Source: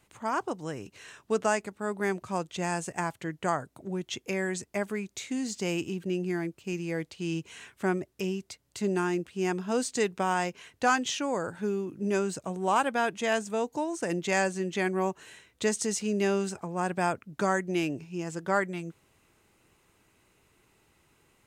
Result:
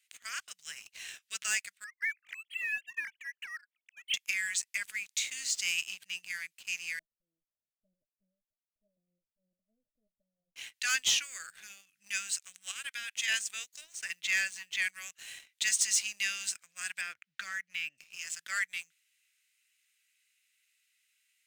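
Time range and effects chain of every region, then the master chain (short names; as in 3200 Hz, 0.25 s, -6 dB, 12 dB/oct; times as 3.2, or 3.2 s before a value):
1.84–4.14 sine-wave speech + Butterworth band-pass 2700 Hz, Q 1
6.99–10.56 minimum comb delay 3.2 ms + sample leveller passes 1 + rippled Chebyshev low-pass 640 Hz, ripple 6 dB
12.71–13.28 Bessel high-pass 860 Hz + compressor, threshold -32 dBFS
13.81–14.82 high shelf 5700 Hz -11 dB + short-mantissa float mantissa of 6-bit
17.01–17.98 tape spacing loss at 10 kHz 24 dB + three-band squash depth 70%
whole clip: inverse Chebyshev high-pass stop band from 980 Hz, stop band 40 dB; sample leveller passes 2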